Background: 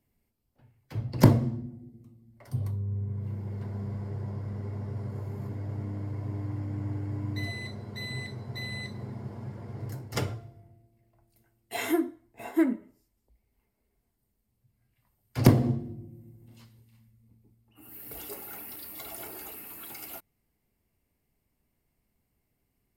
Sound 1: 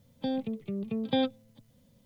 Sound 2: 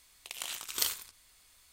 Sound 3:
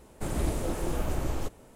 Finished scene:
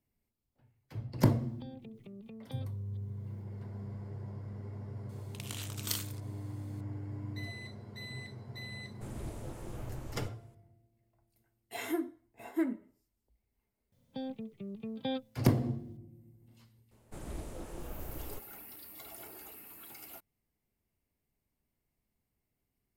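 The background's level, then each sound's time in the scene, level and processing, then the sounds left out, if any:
background −7.5 dB
0:01.38: mix in 1 −8 dB + downward compressor 5 to 1, threshold −38 dBFS
0:05.09: mix in 2 −5 dB
0:08.80: mix in 3 −14.5 dB
0:13.92: mix in 1 −8.5 dB
0:16.91: mix in 3 −13 dB

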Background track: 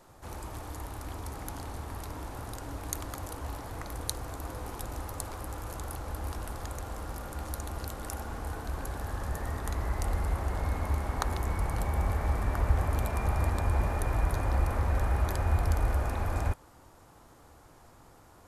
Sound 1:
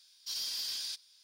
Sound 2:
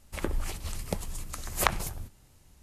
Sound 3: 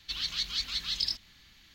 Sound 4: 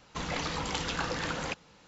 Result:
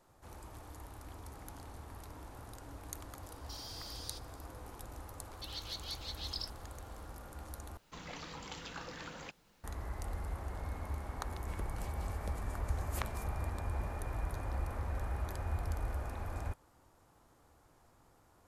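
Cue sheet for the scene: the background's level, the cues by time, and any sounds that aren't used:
background track −10 dB
0:03.23: mix in 1 −6.5 dB + downward compressor, threshold −39 dBFS
0:05.33: mix in 3 −15 dB + high-shelf EQ 5,100 Hz +9 dB
0:07.77: overwrite with 4 −13 dB + background noise pink −58 dBFS
0:11.35: mix in 2 −16 dB

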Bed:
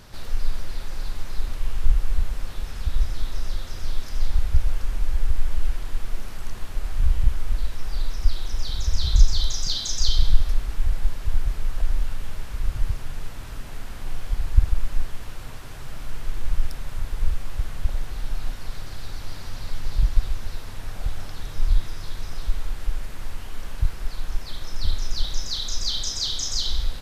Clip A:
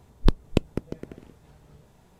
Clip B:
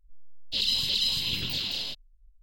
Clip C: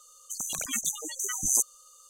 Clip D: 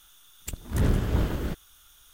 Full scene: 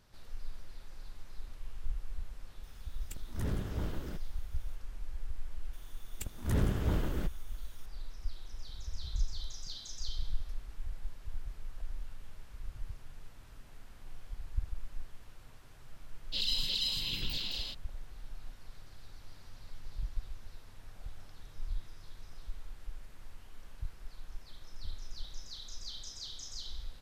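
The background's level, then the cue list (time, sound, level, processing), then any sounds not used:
bed −18 dB
0:02.63: mix in D −11.5 dB
0:05.73: mix in D −6 dB
0:15.80: mix in B −7 dB
not used: A, C

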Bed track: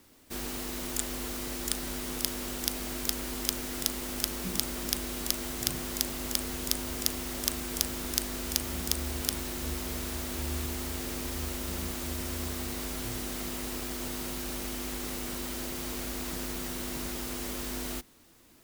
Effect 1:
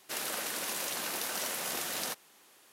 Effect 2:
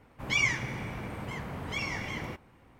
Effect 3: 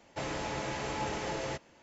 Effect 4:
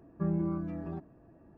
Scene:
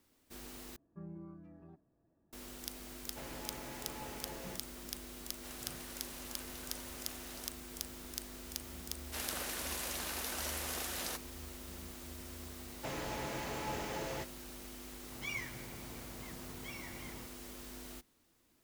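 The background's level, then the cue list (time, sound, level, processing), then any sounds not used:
bed track −13 dB
0:00.76: overwrite with 4 −17.5 dB
0:03.00: mix in 3 −12.5 dB
0:05.34: mix in 1 −15.5 dB
0:09.03: mix in 1 −5 dB
0:12.67: mix in 3 −5 dB
0:14.92: mix in 2 −14.5 dB

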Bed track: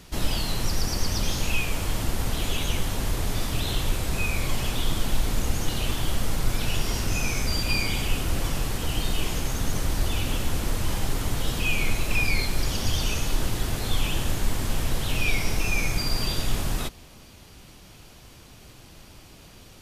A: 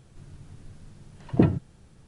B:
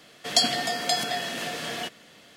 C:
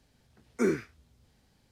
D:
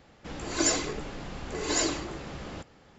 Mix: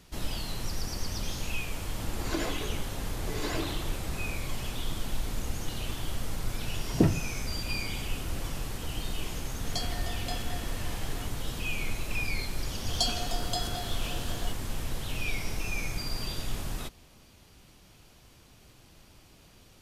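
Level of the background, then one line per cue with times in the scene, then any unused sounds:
bed track −8 dB
0:01.74: mix in D −4.5 dB + treble cut that deepens with the level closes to 2,900 Hz, closed at −23.5 dBFS
0:05.61: mix in A −3.5 dB
0:09.39: mix in B −13 dB + high-shelf EQ 7,700 Hz −7.5 dB
0:12.64: mix in B −7.5 dB + Chebyshev band-stop filter 1,500–3,000 Hz
not used: C

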